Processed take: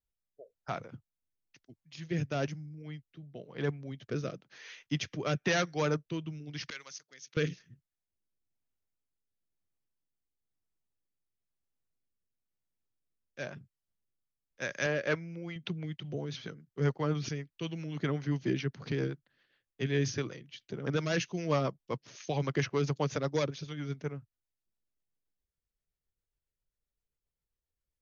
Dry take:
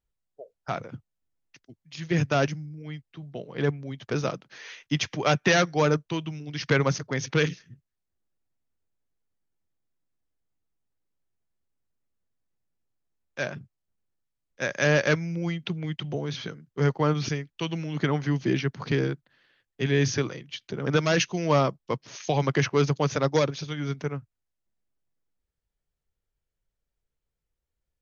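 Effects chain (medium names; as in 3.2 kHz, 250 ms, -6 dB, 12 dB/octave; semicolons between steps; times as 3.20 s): 14.86–15.56 s: tone controls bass -7 dB, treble -9 dB; rotary cabinet horn 1 Hz, later 7.5 Hz, at 14.71 s; 6.70–7.37 s: differentiator; trim -5.5 dB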